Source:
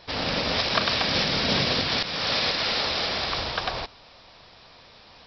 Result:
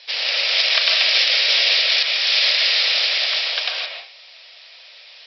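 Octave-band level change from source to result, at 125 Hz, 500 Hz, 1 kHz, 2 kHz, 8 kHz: under -40 dB, -3.5 dB, -4.5 dB, +8.5 dB, n/a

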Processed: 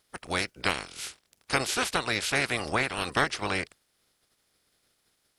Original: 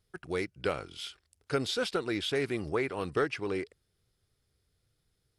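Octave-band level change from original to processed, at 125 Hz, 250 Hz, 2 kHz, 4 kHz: +2.5, -0.5, +9.0, +5.5 dB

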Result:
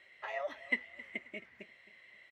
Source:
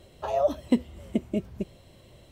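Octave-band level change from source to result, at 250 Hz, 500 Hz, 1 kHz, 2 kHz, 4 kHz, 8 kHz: -24.0 dB, -15.5 dB, -12.5 dB, +11.5 dB, -5.0 dB, n/a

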